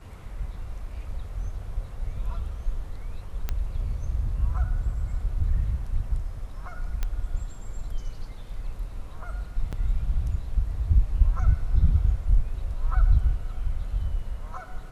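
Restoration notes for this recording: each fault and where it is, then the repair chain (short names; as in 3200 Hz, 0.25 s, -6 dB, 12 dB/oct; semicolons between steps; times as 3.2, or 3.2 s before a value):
3.49 pop -15 dBFS
7.03 pop -15 dBFS
9.72–9.73 gap 7 ms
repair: de-click; interpolate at 9.72, 7 ms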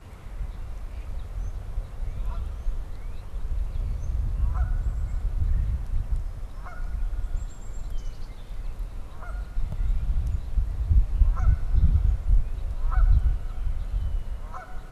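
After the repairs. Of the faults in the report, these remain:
none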